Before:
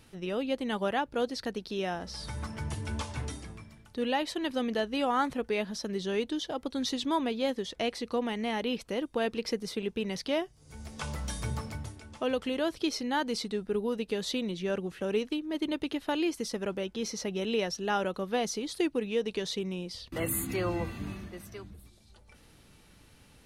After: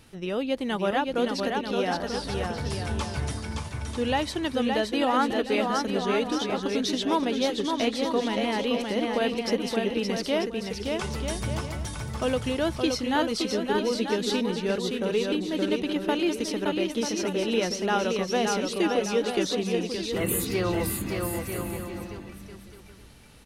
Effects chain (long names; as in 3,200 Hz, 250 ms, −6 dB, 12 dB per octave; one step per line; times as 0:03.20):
bouncing-ball delay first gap 570 ms, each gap 0.65×, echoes 5
level +3.5 dB